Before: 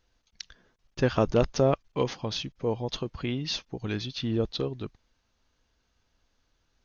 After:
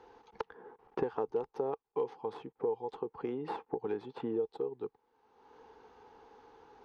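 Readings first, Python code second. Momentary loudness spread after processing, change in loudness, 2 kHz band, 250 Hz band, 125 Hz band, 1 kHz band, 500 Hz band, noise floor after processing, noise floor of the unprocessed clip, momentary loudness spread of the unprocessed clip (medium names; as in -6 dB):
10 LU, -9.0 dB, -14.0 dB, -10.5 dB, -21.5 dB, -5.0 dB, -6.0 dB, -80 dBFS, -74 dBFS, 19 LU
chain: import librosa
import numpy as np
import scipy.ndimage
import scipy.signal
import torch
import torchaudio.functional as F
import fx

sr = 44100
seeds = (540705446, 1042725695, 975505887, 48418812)

y = fx.tracing_dist(x, sr, depth_ms=0.095)
y = fx.double_bandpass(y, sr, hz=610.0, octaves=0.89)
y = fx.band_squash(y, sr, depth_pct=100)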